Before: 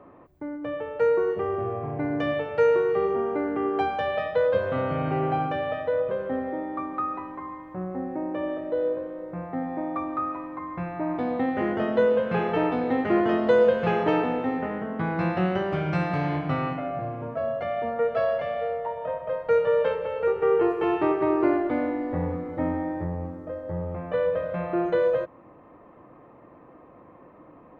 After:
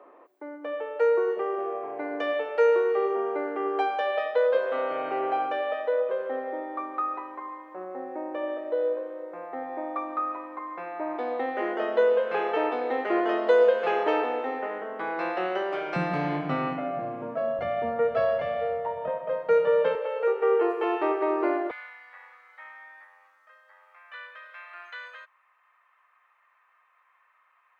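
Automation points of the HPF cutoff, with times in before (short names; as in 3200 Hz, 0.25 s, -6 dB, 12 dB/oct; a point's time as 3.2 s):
HPF 24 dB/oct
370 Hz
from 15.96 s 170 Hz
from 17.59 s 42 Hz
from 19.08 s 160 Hz
from 19.95 s 380 Hz
from 21.71 s 1400 Hz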